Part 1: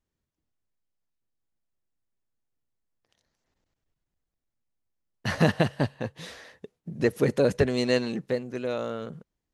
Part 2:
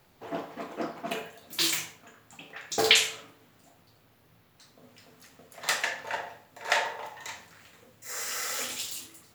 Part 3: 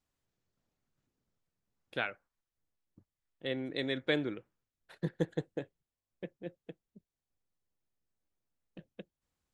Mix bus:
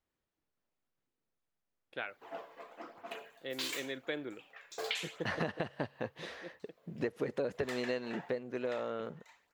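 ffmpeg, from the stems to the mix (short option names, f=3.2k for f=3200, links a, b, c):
-filter_complex "[0:a]highshelf=f=8.2k:g=-10.5,volume=-1dB[a];[1:a]lowshelf=f=210:g=-11,flanger=delay=0:depth=2:regen=-38:speed=0.92:shape=sinusoidal,tremolo=f=0.54:d=0.4,adelay=2000,volume=-3dB,afade=t=out:st=8.17:d=0.74:silence=0.223872[b];[2:a]volume=-4dB[c];[a][b][c]amix=inputs=3:normalize=0,bass=f=250:g=-9,treble=f=4k:g=-7,acompressor=threshold=-32dB:ratio=6"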